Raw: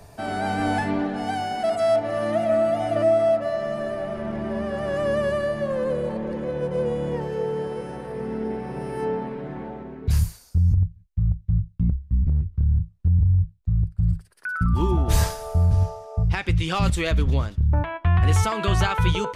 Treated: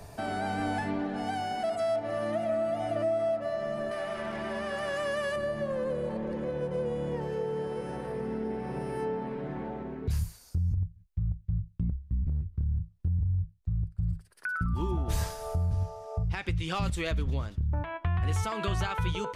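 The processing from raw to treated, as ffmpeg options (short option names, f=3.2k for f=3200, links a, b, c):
-filter_complex "[0:a]asettb=1/sr,asplit=3[a][b][c];[a]atrim=end=3.914[d];[b]atrim=start=3.91:end=5.36,asetpts=PTS-STARTPTS,afade=t=in:d=0.004:c=qsin,afade=t=out:st=1.446:d=0.004:c=qsin,tiltshelf=f=680:g=-8.5[e];[c]atrim=start=5.356[f];[d][e]acrossfade=d=0.004:c1=hsin:c2=qsin[g];[g][f]acrossfade=d=0.004:c1=qsin:c2=hsin,acompressor=threshold=-34dB:ratio=2"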